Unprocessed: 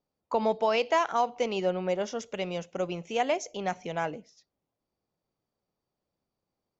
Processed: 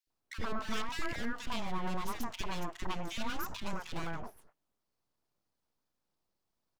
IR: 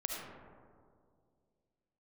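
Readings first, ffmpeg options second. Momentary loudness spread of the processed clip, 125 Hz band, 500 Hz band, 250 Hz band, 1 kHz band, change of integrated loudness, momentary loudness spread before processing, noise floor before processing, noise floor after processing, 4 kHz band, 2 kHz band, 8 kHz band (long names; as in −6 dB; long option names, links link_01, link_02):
5 LU, −2.5 dB, −17.5 dB, −5.0 dB, −10.5 dB, −10.0 dB, 9 LU, below −85 dBFS, −84 dBFS, −4.0 dB, −5.0 dB, can't be measured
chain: -filter_complex "[0:a]alimiter=level_in=1.5dB:limit=-24dB:level=0:latency=1:release=122,volume=-1.5dB,aeval=exprs='abs(val(0))':channel_layout=same,acrossover=split=520|1800[link_01][link_02][link_03];[link_01]adelay=70[link_04];[link_02]adelay=100[link_05];[link_04][link_05][link_03]amix=inputs=3:normalize=0,volume=2.5dB"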